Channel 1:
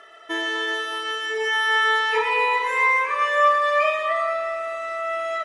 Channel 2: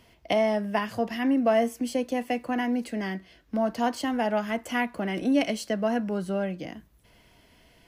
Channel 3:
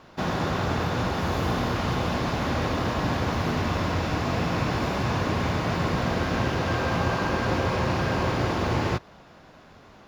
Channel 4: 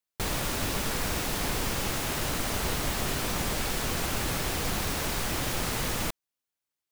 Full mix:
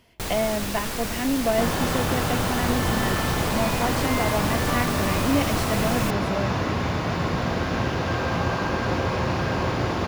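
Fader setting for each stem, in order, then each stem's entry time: -14.5 dB, -1.0 dB, +0.5 dB, 0.0 dB; 1.30 s, 0.00 s, 1.40 s, 0.00 s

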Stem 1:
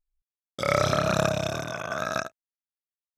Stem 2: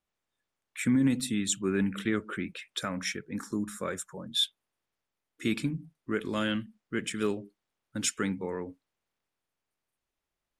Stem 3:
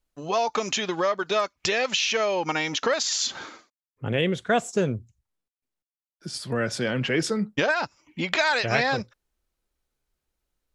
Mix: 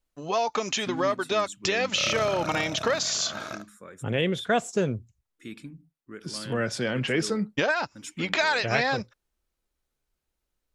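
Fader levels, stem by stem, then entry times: -9.0 dB, -11.5 dB, -1.5 dB; 1.35 s, 0.00 s, 0.00 s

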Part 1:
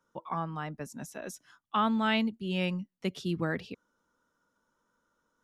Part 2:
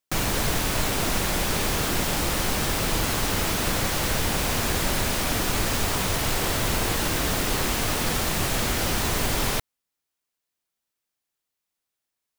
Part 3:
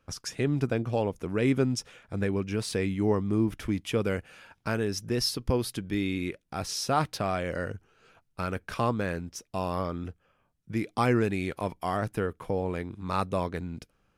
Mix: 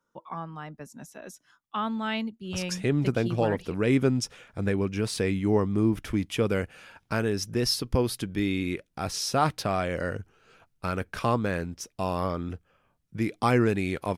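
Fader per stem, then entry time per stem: -2.5 dB, mute, +2.0 dB; 0.00 s, mute, 2.45 s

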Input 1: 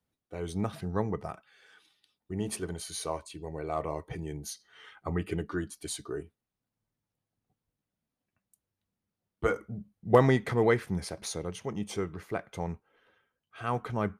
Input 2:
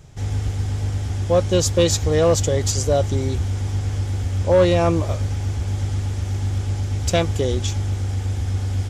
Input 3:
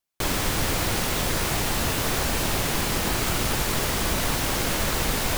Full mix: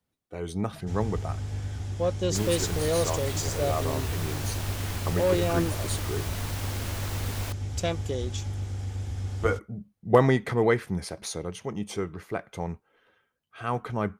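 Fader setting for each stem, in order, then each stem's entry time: +2.0 dB, -9.5 dB, -11.5 dB; 0.00 s, 0.70 s, 2.15 s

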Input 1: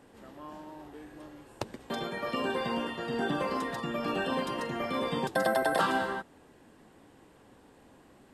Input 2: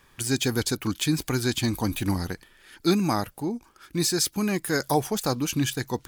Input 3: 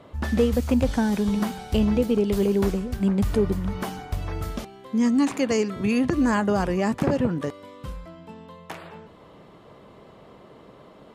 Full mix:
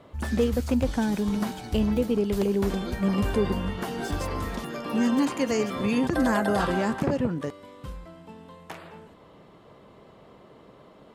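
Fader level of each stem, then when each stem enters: -2.0 dB, -18.5 dB, -3.0 dB; 0.80 s, 0.00 s, 0.00 s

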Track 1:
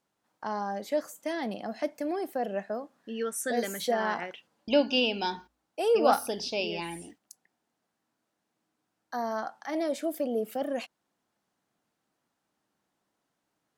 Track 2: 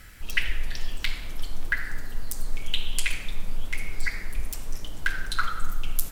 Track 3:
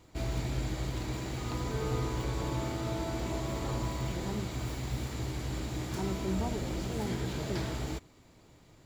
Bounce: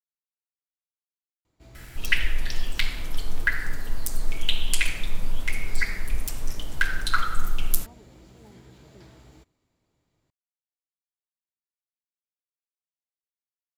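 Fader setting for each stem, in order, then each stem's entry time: mute, +3.0 dB, -16.0 dB; mute, 1.75 s, 1.45 s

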